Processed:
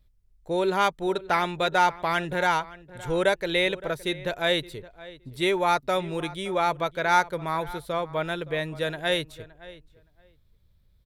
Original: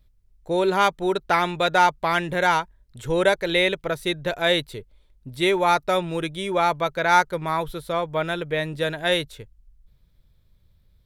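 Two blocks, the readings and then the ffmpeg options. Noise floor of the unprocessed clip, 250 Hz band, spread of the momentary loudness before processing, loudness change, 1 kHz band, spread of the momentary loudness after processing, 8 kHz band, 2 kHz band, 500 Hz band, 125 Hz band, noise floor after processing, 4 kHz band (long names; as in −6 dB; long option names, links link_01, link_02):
−60 dBFS, −3.5 dB, 8 LU, −3.5 dB, −3.5 dB, 15 LU, −3.5 dB, −3.5 dB, −3.5 dB, −3.5 dB, −62 dBFS, −3.5 dB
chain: -filter_complex "[0:a]asplit=2[link_01][link_02];[link_02]adelay=568,lowpass=frequency=2600:poles=1,volume=-18dB,asplit=2[link_03][link_04];[link_04]adelay=568,lowpass=frequency=2600:poles=1,volume=0.16[link_05];[link_01][link_03][link_05]amix=inputs=3:normalize=0,volume=-3.5dB"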